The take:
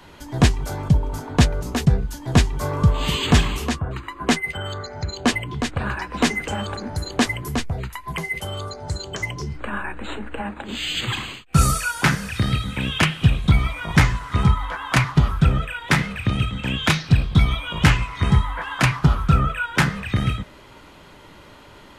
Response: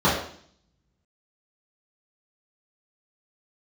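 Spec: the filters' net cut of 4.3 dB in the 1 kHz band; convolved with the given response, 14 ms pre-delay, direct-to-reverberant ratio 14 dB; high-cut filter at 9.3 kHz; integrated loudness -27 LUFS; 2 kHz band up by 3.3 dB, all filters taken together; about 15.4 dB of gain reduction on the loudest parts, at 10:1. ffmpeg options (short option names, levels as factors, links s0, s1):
-filter_complex "[0:a]lowpass=9300,equalizer=f=1000:t=o:g=-8.5,equalizer=f=2000:t=o:g=6.5,acompressor=threshold=0.0501:ratio=10,asplit=2[s0][s1];[1:a]atrim=start_sample=2205,adelay=14[s2];[s1][s2]afir=irnorm=-1:irlink=0,volume=0.02[s3];[s0][s3]amix=inputs=2:normalize=0,volume=1.58"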